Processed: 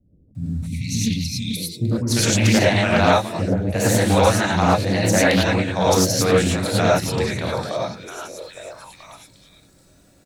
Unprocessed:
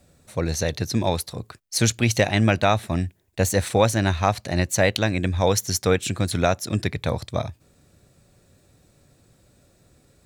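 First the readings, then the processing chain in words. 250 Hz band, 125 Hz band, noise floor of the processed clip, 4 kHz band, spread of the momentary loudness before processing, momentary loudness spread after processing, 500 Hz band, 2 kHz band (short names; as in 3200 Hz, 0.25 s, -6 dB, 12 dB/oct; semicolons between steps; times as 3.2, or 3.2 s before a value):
+5.5 dB, +2.5 dB, -54 dBFS, +4.5 dB, 9 LU, 15 LU, +4.0 dB, +4.5 dB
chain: on a send: delay with a stepping band-pass 0.431 s, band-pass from 170 Hz, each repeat 1.4 oct, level -4.5 dB; on the sum: non-linear reverb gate 0.13 s rising, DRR -5.5 dB; spectral delete 0.32–1.56, 290–2000 Hz; bands offset in time lows, highs 0.35 s, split 370 Hz; Doppler distortion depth 0.27 ms; gain -2 dB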